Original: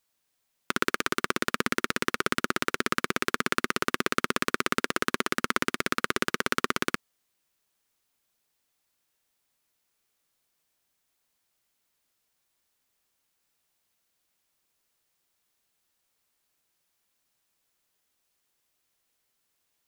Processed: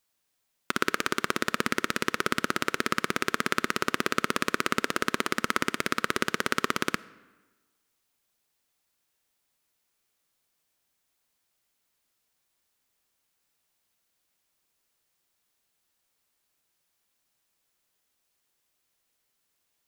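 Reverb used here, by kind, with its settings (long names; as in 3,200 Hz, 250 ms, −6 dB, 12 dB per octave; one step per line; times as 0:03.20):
comb and all-pass reverb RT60 1.3 s, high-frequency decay 0.7×, pre-delay 10 ms, DRR 19 dB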